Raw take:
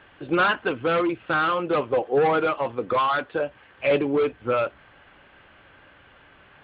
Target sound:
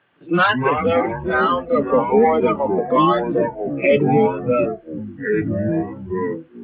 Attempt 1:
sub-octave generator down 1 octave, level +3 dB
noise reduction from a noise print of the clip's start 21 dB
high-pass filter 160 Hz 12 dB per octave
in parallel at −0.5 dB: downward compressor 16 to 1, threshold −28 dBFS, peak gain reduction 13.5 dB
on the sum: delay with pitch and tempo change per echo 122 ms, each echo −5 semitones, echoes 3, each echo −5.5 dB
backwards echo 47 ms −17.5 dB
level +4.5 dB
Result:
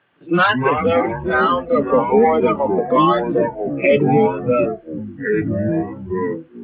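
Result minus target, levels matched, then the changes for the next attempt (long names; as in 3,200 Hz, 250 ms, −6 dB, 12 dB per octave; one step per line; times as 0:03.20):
downward compressor: peak gain reduction −6.5 dB
change: downward compressor 16 to 1, threshold −35 dBFS, peak gain reduction 20 dB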